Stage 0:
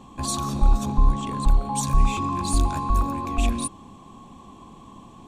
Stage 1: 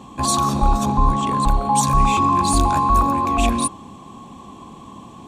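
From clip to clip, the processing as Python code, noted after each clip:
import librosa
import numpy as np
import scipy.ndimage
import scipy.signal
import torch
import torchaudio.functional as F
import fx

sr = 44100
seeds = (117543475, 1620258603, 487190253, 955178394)

y = fx.dynamic_eq(x, sr, hz=920.0, q=0.98, threshold_db=-39.0, ratio=4.0, max_db=5)
y = fx.highpass(y, sr, hz=77.0, slope=6)
y = y * 10.0 ** (6.5 / 20.0)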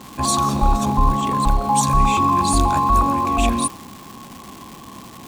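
y = fx.dmg_crackle(x, sr, seeds[0], per_s=520.0, level_db=-29.0)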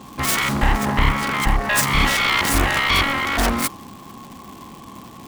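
y = fx.self_delay(x, sr, depth_ms=0.96)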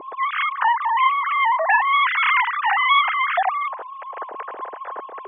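y = fx.sine_speech(x, sr)
y = fx.bandpass_q(y, sr, hz=480.0, q=0.7)
y = y * 10.0 ** (6.0 / 20.0)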